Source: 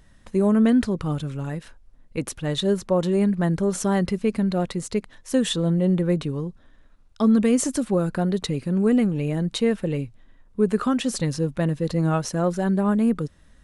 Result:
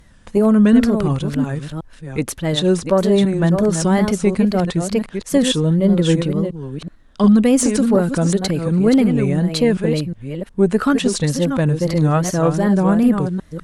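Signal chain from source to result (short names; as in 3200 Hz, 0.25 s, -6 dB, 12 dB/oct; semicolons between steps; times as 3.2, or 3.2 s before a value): reverse delay 0.362 s, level -7 dB; wow and flutter 130 cents; added harmonics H 2 -17 dB, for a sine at -8.5 dBFS; gain +6 dB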